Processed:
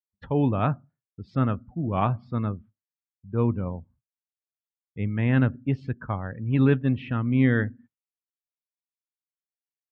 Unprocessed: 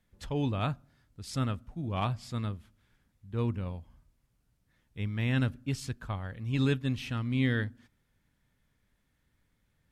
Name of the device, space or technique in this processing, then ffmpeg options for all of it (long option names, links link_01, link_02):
hearing-loss simulation: -af "highpass=110,afftdn=noise_reduction=25:noise_floor=-49,lowpass=1800,agate=range=-33dB:threshold=-58dB:ratio=3:detection=peak,lowpass=3700,volume=8.5dB"